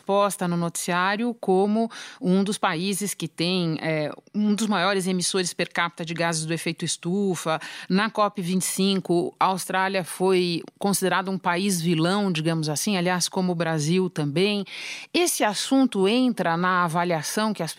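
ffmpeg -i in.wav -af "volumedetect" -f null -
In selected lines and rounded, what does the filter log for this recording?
mean_volume: -23.8 dB
max_volume: -6.8 dB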